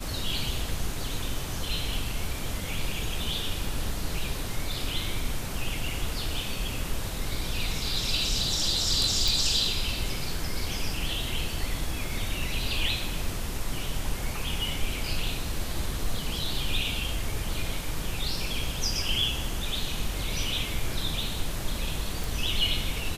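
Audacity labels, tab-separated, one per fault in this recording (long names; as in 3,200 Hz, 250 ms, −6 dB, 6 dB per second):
9.280000	9.280000	click
22.240000	22.240000	click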